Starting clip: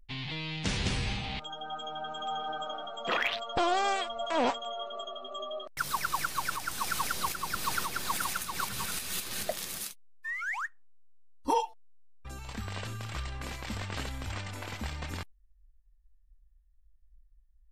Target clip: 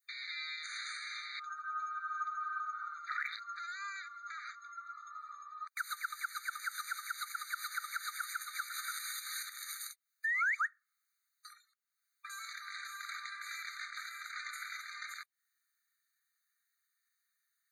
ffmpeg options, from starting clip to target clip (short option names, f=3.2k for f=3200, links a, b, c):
-af "adynamicequalizer=threshold=0.00631:dfrequency=1200:dqfactor=1.2:tfrequency=1200:tqfactor=1.2:attack=5:release=100:ratio=0.375:range=3:mode=boostabove:tftype=bell,acompressor=threshold=-46dB:ratio=6,alimiter=level_in=17dB:limit=-24dB:level=0:latency=1:release=193,volume=-17dB,afftfilt=real='re*eq(mod(floor(b*sr/1024/1200),2),1)':imag='im*eq(mod(floor(b*sr/1024/1200),2),1)':win_size=1024:overlap=0.75,volume=15.5dB"